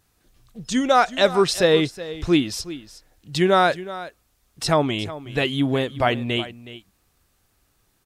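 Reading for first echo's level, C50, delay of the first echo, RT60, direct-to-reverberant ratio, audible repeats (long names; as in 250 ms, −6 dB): −15.5 dB, no reverb audible, 369 ms, no reverb audible, no reverb audible, 1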